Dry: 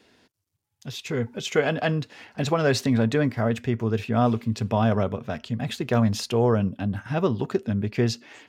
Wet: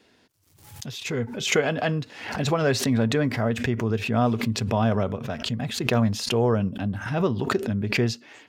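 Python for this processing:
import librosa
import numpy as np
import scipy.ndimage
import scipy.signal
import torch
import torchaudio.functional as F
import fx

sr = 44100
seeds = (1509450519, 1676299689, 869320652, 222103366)

y = fx.pre_swell(x, sr, db_per_s=75.0)
y = y * librosa.db_to_amplitude(-1.0)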